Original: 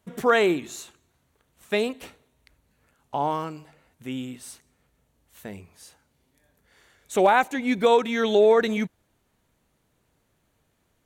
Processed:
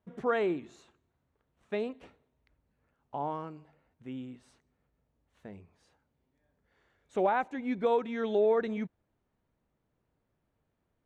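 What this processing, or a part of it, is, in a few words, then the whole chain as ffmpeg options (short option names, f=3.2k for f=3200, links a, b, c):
through cloth: -af "lowpass=6.8k,highshelf=f=2.7k:g=-15,volume=-8dB"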